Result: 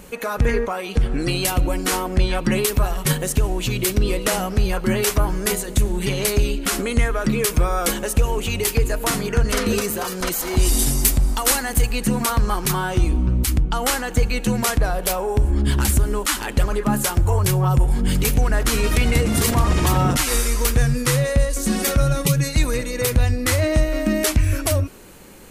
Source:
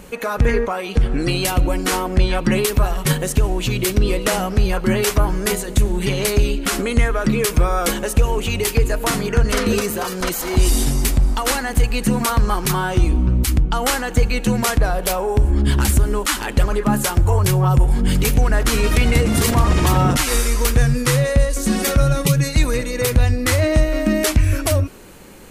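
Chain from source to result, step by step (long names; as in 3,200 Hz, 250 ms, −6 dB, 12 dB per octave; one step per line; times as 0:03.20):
high-shelf EQ 6,400 Hz +4.5 dB, from 0:10.79 +11.5 dB, from 0:11.92 +3.5 dB
level −2.5 dB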